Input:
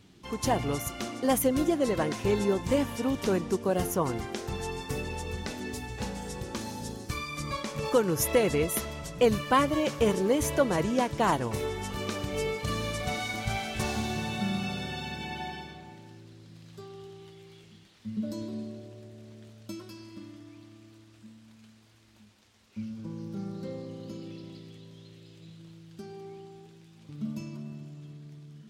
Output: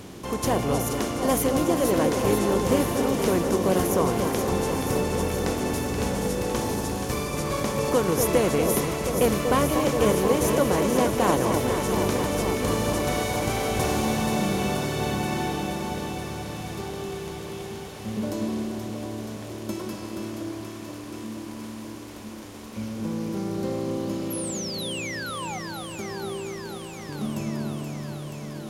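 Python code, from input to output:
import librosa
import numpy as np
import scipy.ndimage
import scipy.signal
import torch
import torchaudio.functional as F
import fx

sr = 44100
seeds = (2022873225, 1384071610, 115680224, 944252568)

p1 = fx.bin_compress(x, sr, power=0.6)
p2 = fx.peak_eq(p1, sr, hz=1900.0, db=-3.5, octaves=2.8)
p3 = fx.spec_paint(p2, sr, seeds[0], shape='fall', start_s=24.3, length_s=1.29, low_hz=710.0, high_hz=12000.0, level_db=-35.0)
y = p3 + fx.echo_alternate(p3, sr, ms=239, hz=1100.0, feedback_pct=87, wet_db=-5.5, dry=0)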